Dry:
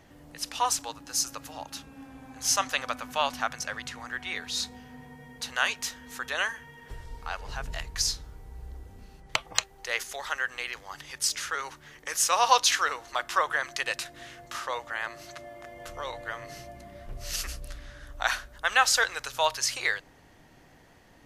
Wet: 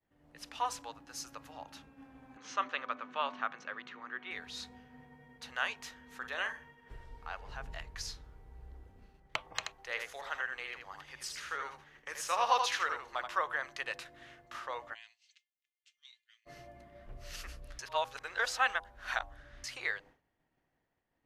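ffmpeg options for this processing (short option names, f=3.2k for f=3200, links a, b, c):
-filter_complex "[0:a]asettb=1/sr,asplit=3[a][b][c];[a]atrim=end=2.374[d];[b]atrim=start=2.37:end=4.31,asetpts=PTS-STARTPTS,afade=t=in:d=0.004:c=qsin,afade=t=out:st=1.936:d=0.004:c=qsin,highpass=f=140:w=0.5412,highpass=f=140:w=1.3066,equalizer=f=140:t=q:w=4:g=-9,equalizer=f=380:t=q:w=4:g=6,equalizer=f=740:t=q:w=4:g=-6,equalizer=f=1.2k:t=q:w=4:g=5,equalizer=f=5k:t=q:w=4:g=-10,lowpass=f=5.4k:w=0.5412,lowpass=f=5.4k:w=1.3066[e];[c]atrim=start=4.306[f];[d][e]acrossfade=d=0.004:c1=hsin:c2=qsin[g];[g][f]acrossfade=d=0.004:c1=qsin:c2=hsin,asettb=1/sr,asplit=3[h][i][j];[h]atrim=end=6.174[k];[i]atrim=start=6.17:end=7.1,asetpts=PTS-STARTPTS,afade=t=in:d=0.004:c=qsin,afade=t=out:st=0.926:d=0.004:c=qsin,asplit=2[l][m];[m]adelay=44,volume=-8.5dB[n];[l][n]amix=inputs=2:normalize=0,atrim=end_sample=41013[o];[j]atrim=start=7.096[p];[k][o]acrossfade=d=0.004:c1=hsin:c2=qsin[q];[q][p]acrossfade=d=0.004:c1=qsin:c2=hsin,asplit=3[r][s][t];[r]afade=t=out:st=9.58:d=0.02[u];[s]aecho=1:1:80:0.531,afade=t=in:st=9.58:d=0.02,afade=t=out:st=13.26:d=0.02[v];[t]afade=t=in:st=13.26:d=0.02[w];[u][v][w]amix=inputs=3:normalize=0,asplit=3[x][y][z];[x]afade=t=out:st=14.93:d=0.02[aa];[y]asuperpass=centerf=4700:order=8:qfactor=0.81,afade=t=in:st=14.93:d=0.02,afade=t=out:st=16.45:d=0.02[ab];[z]afade=t=in:st=16.45:d=0.02[ac];[aa][ab][ac]amix=inputs=3:normalize=0,asplit=3[ad][ae][af];[ad]atrim=end=17.792[ag];[ae]atrim=start=17.788:end=19.642,asetpts=PTS-STARTPTS,areverse[ah];[af]atrim=start=19.638[ai];[ag][ah]acrossfade=d=0.004:c1=hsin:c2=hsin[aj];[aj][ai]acrossfade=d=0.004:c1=hsin:c2=hsin,bandreject=f=99.9:t=h:w=4,bandreject=f=199.8:t=h:w=4,bandreject=f=299.7:t=h:w=4,bandreject=f=399.6:t=h:w=4,bandreject=f=499.5:t=h:w=4,bandreject=f=599.4:t=h:w=4,bandreject=f=699.3:t=h:w=4,bandreject=f=799.2:t=h:w=4,bandreject=f=899.1:t=h:w=4,bandreject=f=999:t=h:w=4,bandreject=f=1.0989k:t=h:w=4,agate=range=-33dB:threshold=-45dB:ratio=3:detection=peak,bass=f=250:g=-2,treble=f=4k:g=-11,volume=-7dB"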